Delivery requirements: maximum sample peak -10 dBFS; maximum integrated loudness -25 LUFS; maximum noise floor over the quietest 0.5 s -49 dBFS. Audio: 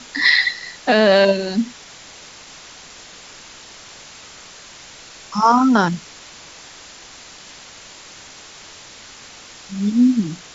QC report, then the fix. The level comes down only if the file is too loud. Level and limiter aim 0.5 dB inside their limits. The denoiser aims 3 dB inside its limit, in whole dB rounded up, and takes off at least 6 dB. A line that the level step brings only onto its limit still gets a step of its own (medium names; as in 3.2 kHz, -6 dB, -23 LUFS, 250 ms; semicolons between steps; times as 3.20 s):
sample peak -2.0 dBFS: fail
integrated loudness -16.5 LUFS: fail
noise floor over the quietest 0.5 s -41 dBFS: fail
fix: trim -9 dB